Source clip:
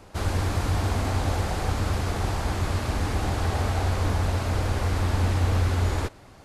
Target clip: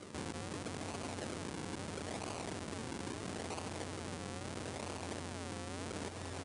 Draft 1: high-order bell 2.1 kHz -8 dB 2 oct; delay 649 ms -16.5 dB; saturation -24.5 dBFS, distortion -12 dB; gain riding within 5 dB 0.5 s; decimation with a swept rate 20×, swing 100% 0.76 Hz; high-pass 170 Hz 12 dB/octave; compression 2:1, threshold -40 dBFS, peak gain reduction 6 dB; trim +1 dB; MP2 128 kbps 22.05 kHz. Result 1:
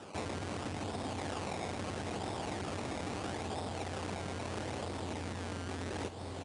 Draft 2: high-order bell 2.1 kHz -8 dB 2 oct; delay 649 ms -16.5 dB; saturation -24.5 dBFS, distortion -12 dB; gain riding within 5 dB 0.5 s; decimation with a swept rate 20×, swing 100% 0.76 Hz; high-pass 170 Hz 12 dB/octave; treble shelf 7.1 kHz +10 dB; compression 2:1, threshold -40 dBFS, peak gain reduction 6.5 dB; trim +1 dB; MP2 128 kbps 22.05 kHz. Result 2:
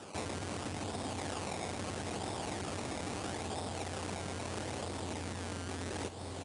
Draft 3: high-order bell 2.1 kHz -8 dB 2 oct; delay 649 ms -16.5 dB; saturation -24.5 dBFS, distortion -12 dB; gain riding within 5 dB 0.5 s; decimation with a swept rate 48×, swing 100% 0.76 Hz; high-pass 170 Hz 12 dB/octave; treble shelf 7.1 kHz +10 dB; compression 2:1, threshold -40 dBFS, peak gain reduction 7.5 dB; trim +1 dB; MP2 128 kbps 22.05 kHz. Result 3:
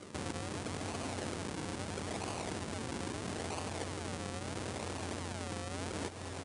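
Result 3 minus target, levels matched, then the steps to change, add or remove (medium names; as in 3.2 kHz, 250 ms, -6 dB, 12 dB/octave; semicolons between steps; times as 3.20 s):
saturation: distortion -6 dB
change: saturation -33.5 dBFS, distortion -6 dB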